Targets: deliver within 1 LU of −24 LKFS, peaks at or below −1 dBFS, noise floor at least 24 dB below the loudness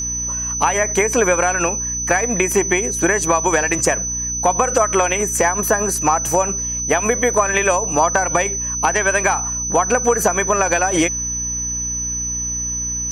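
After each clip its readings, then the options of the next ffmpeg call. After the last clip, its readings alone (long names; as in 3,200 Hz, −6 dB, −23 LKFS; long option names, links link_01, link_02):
mains hum 60 Hz; hum harmonics up to 300 Hz; level of the hum −29 dBFS; interfering tone 6,000 Hz; level of the tone −21 dBFS; integrated loudness −17.0 LKFS; sample peak −3.0 dBFS; target loudness −24.0 LKFS
→ -af "bandreject=frequency=60:width_type=h:width=4,bandreject=frequency=120:width_type=h:width=4,bandreject=frequency=180:width_type=h:width=4,bandreject=frequency=240:width_type=h:width=4,bandreject=frequency=300:width_type=h:width=4"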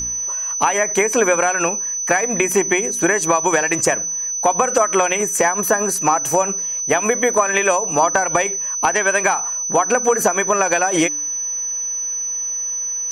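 mains hum none found; interfering tone 6,000 Hz; level of the tone −21 dBFS
→ -af "bandreject=frequency=6000:width=30"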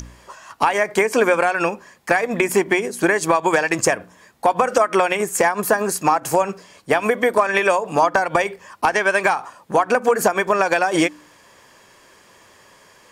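interfering tone none found; integrated loudness −19.0 LKFS; sample peak −4.5 dBFS; target loudness −24.0 LKFS
→ -af "volume=-5dB"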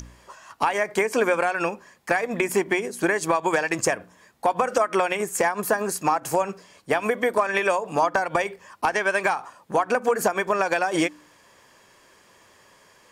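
integrated loudness −24.0 LKFS; sample peak −9.5 dBFS; background noise floor −56 dBFS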